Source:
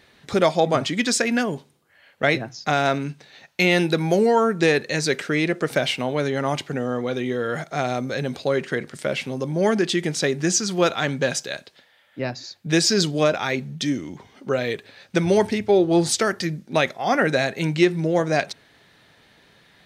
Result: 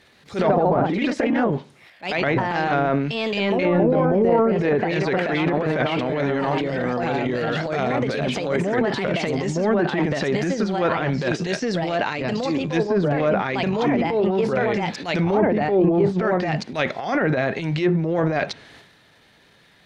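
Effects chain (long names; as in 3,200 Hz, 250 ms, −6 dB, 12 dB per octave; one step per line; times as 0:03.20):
delay with pitch and tempo change per echo 128 ms, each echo +2 semitones, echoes 2
transient designer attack −11 dB, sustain +9 dB
treble cut that deepens with the level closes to 920 Hz, closed at −13.5 dBFS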